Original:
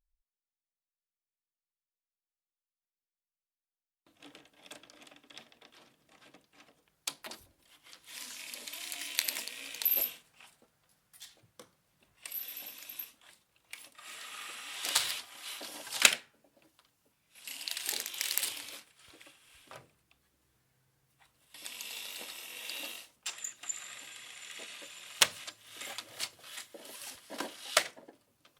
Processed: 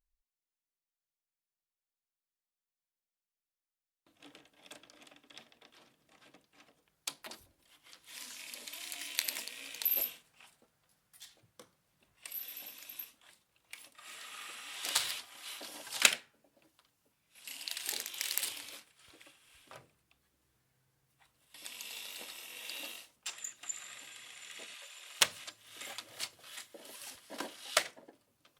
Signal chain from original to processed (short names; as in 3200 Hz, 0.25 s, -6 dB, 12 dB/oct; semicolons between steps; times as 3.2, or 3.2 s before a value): 24.74–25.19 HPF 760 Hz -> 240 Hz 24 dB/oct; gain -2.5 dB